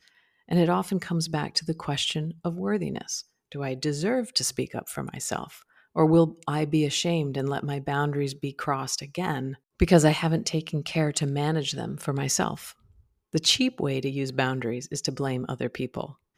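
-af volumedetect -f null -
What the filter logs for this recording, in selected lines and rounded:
mean_volume: -27.0 dB
max_volume: -5.3 dB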